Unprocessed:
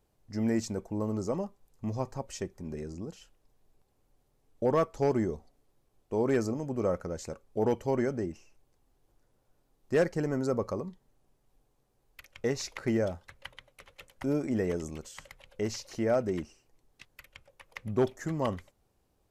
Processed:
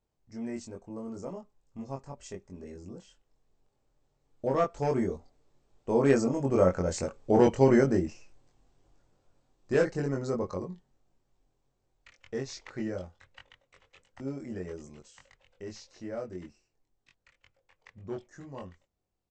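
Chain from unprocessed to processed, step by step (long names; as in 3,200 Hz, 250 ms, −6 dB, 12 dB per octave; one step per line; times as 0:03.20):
source passing by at 0:07.37, 14 m/s, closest 15 metres
linear-phase brick-wall low-pass 8,400 Hz
double-tracking delay 22 ms −2 dB
level +6 dB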